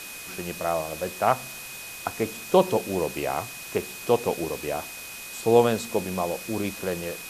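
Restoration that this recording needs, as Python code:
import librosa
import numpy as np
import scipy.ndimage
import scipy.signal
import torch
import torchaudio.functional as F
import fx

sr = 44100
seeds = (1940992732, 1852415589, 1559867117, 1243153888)

y = fx.notch(x, sr, hz=2500.0, q=30.0)
y = fx.noise_reduce(y, sr, print_start_s=1.54, print_end_s=2.04, reduce_db=30.0)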